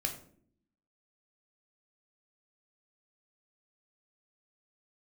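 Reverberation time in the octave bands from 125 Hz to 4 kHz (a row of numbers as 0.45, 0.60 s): 0.85, 1.0, 0.70, 0.45, 0.40, 0.35 s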